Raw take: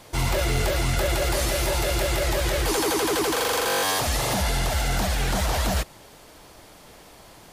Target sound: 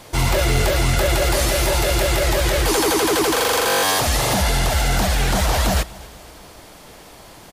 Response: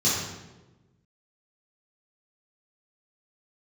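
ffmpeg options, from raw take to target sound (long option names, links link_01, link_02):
-af "aecho=1:1:241|482|723|964:0.0794|0.0413|0.0215|0.0112,volume=5.5dB"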